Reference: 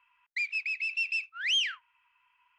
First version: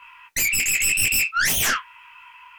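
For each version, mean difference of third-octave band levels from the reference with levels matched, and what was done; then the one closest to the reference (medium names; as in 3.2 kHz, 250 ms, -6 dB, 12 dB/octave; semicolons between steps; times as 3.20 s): 17.0 dB: flange 0.91 Hz, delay 7.8 ms, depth 4.5 ms, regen -57%; sine folder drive 18 dB, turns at -22 dBFS; detune thickener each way 32 cents; trim +9 dB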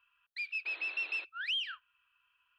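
5.5 dB: static phaser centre 1.4 kHz, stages 8; compression 6:1, threshold -32 dBFS, peak gain reduction 8 dB; band-stop 780 Hz, Q 13; painted sound noise, 0.65–1.25 s, 300–4300 Hz -52 dBFS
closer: second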